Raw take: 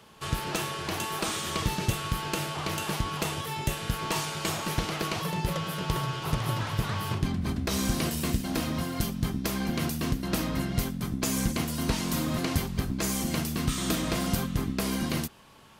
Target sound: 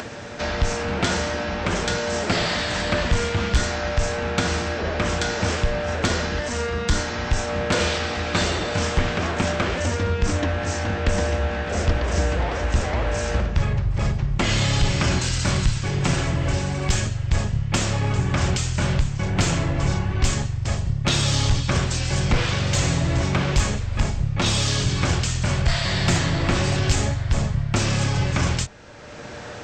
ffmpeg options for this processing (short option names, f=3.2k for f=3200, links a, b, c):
-filter_complex "[0:a]acrossover=split=150[a][b];[b]acompressor=mode=upward:threshold=-33dB:ratio=2.5[c];[a][c]amix=inputs=2:normalize=0,asetrate=23505,aresample=44100,asoftclip=type=tanh:threshold=-16.5dB,volume=8.5dB"